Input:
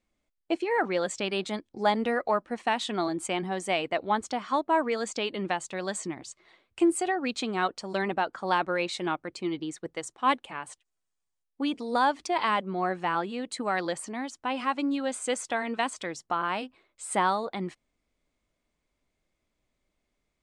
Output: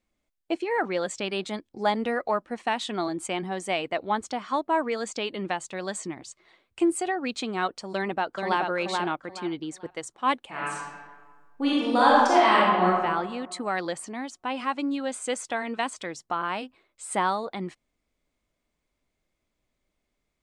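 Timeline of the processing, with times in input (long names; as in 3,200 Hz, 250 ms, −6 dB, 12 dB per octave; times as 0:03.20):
0:07.94–0:08.61: delay throw 430 ms, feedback 25%, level −3.5 dB
0:10.49–0:12.87: thrown reverb, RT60 1.5 s, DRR −7 dB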